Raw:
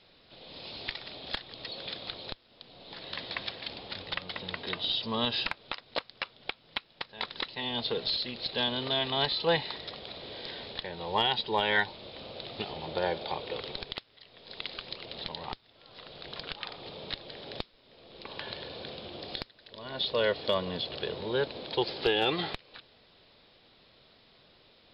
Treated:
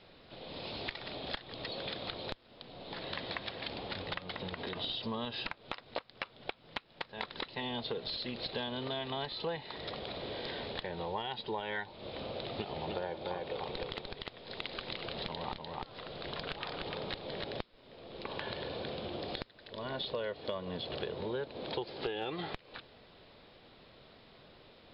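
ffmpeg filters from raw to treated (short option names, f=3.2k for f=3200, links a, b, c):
-filter_complex "[0:a]asplit=3[a][b][c];[a]afade=t=out:st=4.33:d=0.02[d];[b]acompressor=threshold=-36dB:ratio=6:attack=3.2:release=140:knee=1:detection=peak,afade=t=in:st=4.33:d=0.02,afade=t=out:st=4.75:d=0.02[e];[c]afade=t=in:st=4.75:d=0.02[f];[d][e][f]amix=inputs=3:normalize=0,asettb=1/sr,asplit=3[g][h][i];[g]atrim=end=12.414[j];[h]atrim=start=12.41:end=17.44,asetpts=PTS-STARTPTS,afade=t=in:d=0.004:c=qsin,afade=t=out:st=5.026:d=0.004:c=qsin,aecho=1:1:298:0.596,atrim=end_sample=221823[k];[i]atrim=start=17.436[l];[j][k]acrossfade=d=0.004:c1=hsin:c2=qsin[m];[m][l]acrossfade=d=0.004:c1=qsin:c2=hsin,lowpass=f=2k:p=1,acompressor=threshold=-40dB:ratio=6,volume=5dB"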